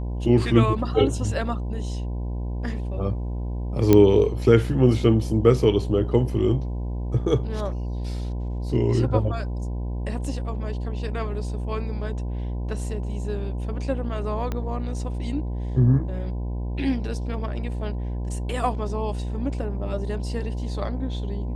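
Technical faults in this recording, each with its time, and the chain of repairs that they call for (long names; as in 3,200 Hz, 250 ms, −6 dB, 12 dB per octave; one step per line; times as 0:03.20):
mains buzz 60 Hz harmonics 17 −28 dBFS
0:03.93: click −4 dBFS
0:14.52: click −15 dBFS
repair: click removal
hum removal 60 Hz, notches 17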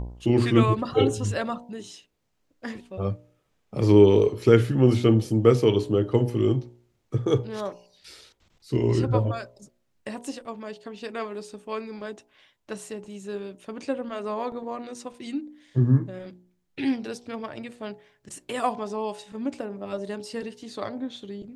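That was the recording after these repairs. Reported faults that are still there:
0:03.93: click
0:14.52: click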